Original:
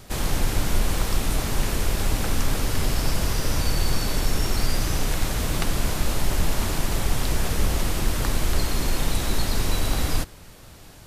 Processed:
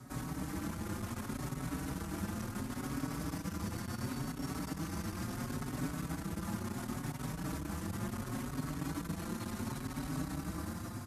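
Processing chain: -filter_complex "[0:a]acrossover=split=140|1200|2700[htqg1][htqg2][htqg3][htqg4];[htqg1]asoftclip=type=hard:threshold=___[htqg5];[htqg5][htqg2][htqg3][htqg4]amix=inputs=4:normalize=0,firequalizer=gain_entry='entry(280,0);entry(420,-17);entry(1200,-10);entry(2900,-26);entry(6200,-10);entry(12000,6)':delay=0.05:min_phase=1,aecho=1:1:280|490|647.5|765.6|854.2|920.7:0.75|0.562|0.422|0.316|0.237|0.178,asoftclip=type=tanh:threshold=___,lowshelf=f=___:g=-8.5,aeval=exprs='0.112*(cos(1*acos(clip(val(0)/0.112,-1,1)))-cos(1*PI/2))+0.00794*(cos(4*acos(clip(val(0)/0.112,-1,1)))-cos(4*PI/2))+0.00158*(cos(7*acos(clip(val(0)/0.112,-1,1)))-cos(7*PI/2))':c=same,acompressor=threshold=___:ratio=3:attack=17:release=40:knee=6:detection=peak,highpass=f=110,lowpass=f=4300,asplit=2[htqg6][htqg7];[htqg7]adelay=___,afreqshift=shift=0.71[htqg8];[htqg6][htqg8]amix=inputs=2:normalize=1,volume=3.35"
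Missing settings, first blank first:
0.106, 0.141, 310, 0.00891, 5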